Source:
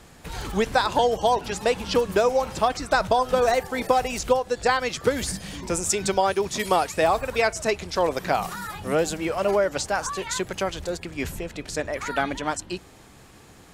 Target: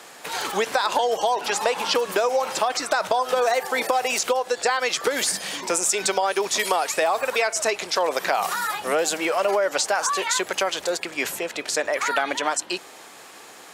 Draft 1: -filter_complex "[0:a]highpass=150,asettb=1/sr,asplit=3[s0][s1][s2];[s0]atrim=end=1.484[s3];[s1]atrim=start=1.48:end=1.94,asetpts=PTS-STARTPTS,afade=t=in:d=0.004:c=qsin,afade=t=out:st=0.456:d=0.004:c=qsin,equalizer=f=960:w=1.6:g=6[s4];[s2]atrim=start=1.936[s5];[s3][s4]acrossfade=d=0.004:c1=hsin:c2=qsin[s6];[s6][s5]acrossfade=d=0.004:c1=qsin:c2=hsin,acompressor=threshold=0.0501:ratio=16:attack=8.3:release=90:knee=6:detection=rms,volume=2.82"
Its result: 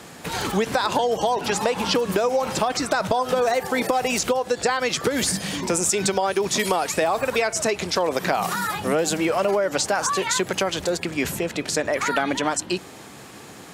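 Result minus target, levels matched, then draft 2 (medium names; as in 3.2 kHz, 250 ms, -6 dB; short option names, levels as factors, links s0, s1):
125 Hz band +15.5 dB
-filter_complex "[0:a]highpass=510,asettb=1/sr,asplit=3[s0][s1][s2];[s0]atrim=end=1.484[s3];[s1]atrim=start=1.48:end=1.94,asetpts=PTS-STARTPTS,afade=t=in:d=0.004:c=qsin,afade=t=out:st=0.456:d=0.004:c=qsin,equalizer=f=960:w=1.6:g=6[s4];[s2]atrim=start=1.936[s5];[s3][s4]acrossfade=d=0.004:c1=hsin:c2=qsin[s6];[s6][s5]acrossfade=d=0.004:c1=qsin:c2=hsin,acompressor=threshold=0.0501:ratio=16:attack=8.3:release=90:knee=6:detection=rms,volume=2.82"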